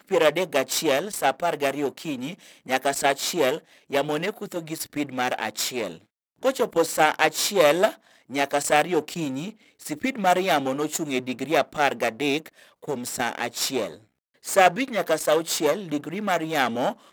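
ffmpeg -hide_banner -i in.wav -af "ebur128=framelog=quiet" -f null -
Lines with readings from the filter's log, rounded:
Integrated loudness:
  I:         -24.3 LUFS
  Threshold: -34.6 LUFS
Loudness range:
  LRA:         4.0 LU
  Threshold: -44.7 LUFS
  LRA low:   -26.6 LUFS
  LRA high:  -22.6 LUFS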